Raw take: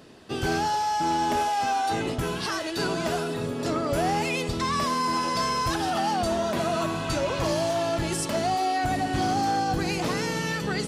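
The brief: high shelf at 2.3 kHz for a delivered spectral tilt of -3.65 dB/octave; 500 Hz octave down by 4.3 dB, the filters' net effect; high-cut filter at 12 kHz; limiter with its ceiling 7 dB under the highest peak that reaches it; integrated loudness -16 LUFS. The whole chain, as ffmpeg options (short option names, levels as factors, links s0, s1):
-af "lowpass=12000,equalizer=f=500:t=o:g=-6.5,highshelf=f=2300:g=3,volume=5.01,alimiter=limit=0.398:level=0:latency=1"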